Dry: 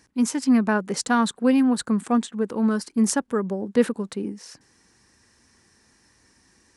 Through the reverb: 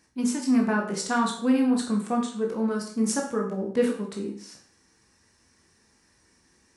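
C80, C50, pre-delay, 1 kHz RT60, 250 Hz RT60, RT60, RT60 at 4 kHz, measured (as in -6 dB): 10.5 dB, 7.0 dB, 16 ms, 0.50 s, 0.50 s, 0.50 s, 0.50 s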